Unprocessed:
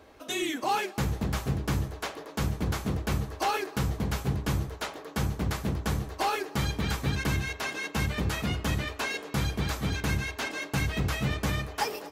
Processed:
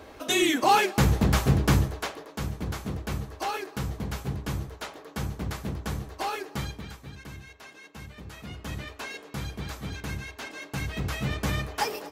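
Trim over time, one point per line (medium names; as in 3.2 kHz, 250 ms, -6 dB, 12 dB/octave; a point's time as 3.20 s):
1.72 s +7.5 dB
2.34 s -3 dB
6.58 s -3 dB
6.98 s -14.5 dB
8.24 s -14.5 dB
8.78 s -6 dB
10.49 s -6 dB
11.59 s +1.5 dB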